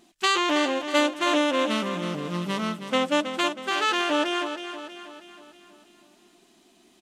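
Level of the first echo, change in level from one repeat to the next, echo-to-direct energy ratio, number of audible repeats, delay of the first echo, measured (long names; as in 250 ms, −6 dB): −9.5 dB, −6.0 dB, −8.5 dB, 5, 320 ms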